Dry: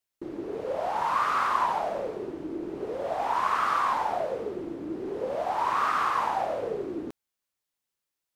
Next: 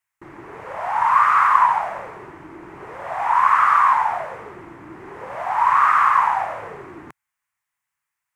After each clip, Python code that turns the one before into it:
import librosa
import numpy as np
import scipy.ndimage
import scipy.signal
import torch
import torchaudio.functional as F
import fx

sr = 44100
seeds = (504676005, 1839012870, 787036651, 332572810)

y = fx.graphic_eq_10(x, sr, hz=(125, 250, 500, 1000, 2000, 4000, 8000), db=(6, -7, -9, 11, 12, -8, 4))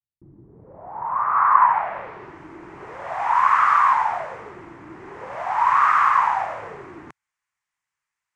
y = fx.filter_sweep_lowpass(x, sr, from_hz=190.0, to_hz=6800.0, start_s=0.49, end_s=2.42, q=1.1)
y = F.gain(torch.from_numpy(y), -1.5).numpy()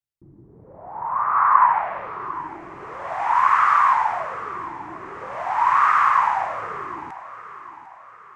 y = fx.echo_feedback(x, sr, ms=750, feedback_pct=46, wet_db=-15.5)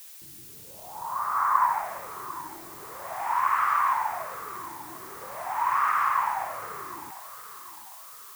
y = fx.dmg_noise_colour(x, sr, seeds[0], colour='blue', level_db=-39.0)
y = F.gain(torch.from_numpy(y), -7.5).numpy()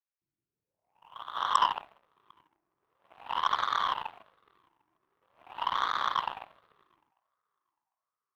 y = np.convolve(x, np.full(12, 1.0 / 12))[:len(x)]
y = fx.cheby_harmonics(y, sr, harmonics=(7,), levels_db=(-17,), full_scale_db=-10.0)